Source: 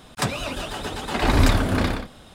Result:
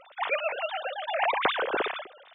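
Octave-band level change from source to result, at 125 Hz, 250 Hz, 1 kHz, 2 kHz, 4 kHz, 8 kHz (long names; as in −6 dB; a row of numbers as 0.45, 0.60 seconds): below −35 dB, −19.0 dB, −0.5 dB, −1.0 dB, −5.0 dB, below −40 dB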